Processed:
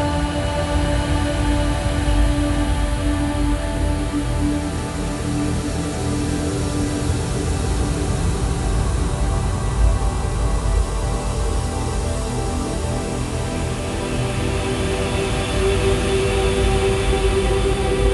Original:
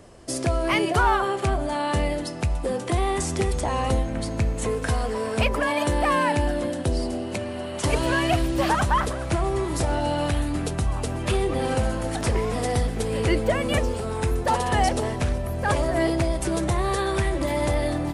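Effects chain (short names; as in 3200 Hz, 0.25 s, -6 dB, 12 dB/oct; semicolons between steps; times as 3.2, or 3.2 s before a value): Paulstretch 15×, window 0.50 s, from 10.25; diffused feedback echo 0.619 s, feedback 66%, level -6 dB; gain +3.5 dB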